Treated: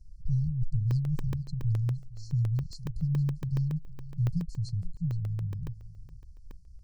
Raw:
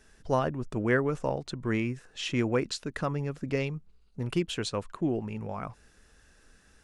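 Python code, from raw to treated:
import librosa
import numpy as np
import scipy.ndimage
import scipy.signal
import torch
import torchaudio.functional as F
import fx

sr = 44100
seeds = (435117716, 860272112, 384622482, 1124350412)

p1 = fx.delta_mod(x, sr, bps=64000, step_db=-49.0, at=(3.76, 4.34))
p2 = fx.peak_eq(p1, sr, hz=1400.0, db=14.0, octaves=0.69)
p3 = 10.0 ** (-16.5 / 20.0) * (np.abs((p2 / 10.0 ** (-16.5 / 20.0) + 3.0) % 4.0 - 2.0) - 1.0)
p4 = p2 + (p3 * librosa.db_to_amplitude(-10.5))
p5 = fx.brickwall_bandstop(p4, sr, low_hz=180.0, high_hz=4100.0)
p6 = fx.riaa(p5, sr, side='playback')
p7 = p6 + 10.0 ** (-17.5 / 20.0) * np.pad(p6, (int(463 * sr / 1000.0), 0))[:len(p6)]
p8 = fx.buffer_crackle(p7, sr, first_s=0.91, period_s=0.14, block=64, kind='zero')
y = p8 * librosa.db_to_amplitude(-6.0)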